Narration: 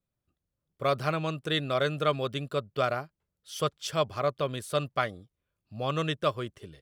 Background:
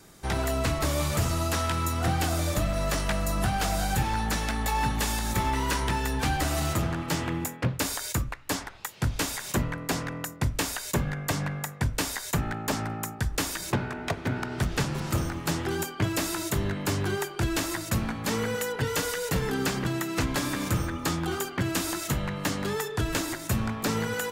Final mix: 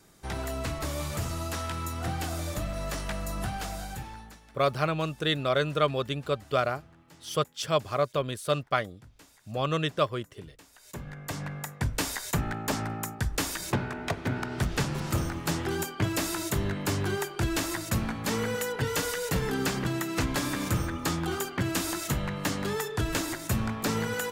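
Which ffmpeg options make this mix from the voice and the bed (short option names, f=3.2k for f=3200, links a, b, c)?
-filter_complex "[0:a]adelay=3750,volume=1.5dB[a];[1:a]volume=19.5dB,afade=t=out:st=3.43:d=0.97:silence=0.0944061,afade=t=in:st=10.72:d=1.28:silence=0.0530884[b];[a][b]amix=inputs=2:normalize=0"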